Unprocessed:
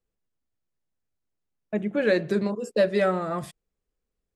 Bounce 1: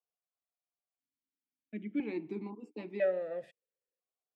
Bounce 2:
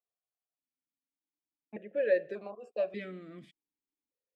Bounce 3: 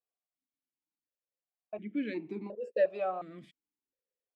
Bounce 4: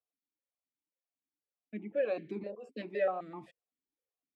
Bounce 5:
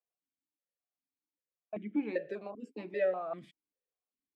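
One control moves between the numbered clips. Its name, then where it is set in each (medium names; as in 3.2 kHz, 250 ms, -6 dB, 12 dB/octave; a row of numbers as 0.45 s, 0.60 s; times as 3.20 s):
stepped vowel filter, rate: 1 Hz, 1.7 Hz, 2.8 Hz, 7.8 Hz, 5.1 Hz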